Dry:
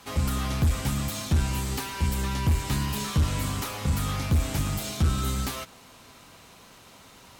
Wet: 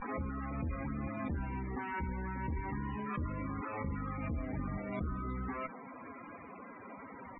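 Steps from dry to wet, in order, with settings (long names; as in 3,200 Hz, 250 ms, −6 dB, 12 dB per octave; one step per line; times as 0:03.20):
octave-band graphic EQ 125/250/500/1,000/2,000/4,000/8,000 Hz −3/+7/+4/+4/+10/−5/−7 dB
reversed playback
downward compressor 16 to 1, threshold −35 dBFS, peak gain reduction 18.5 dB
reversed playback
harmonic generator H 4 −19 dB, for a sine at −24.5 dBFS
pitch vibrato 0.35 Hz 68 cents
spectral peaks only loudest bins 32
high-frequency loss of the air 370 metres
background raised ahead of every attack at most 35 dB per second
level +1 dB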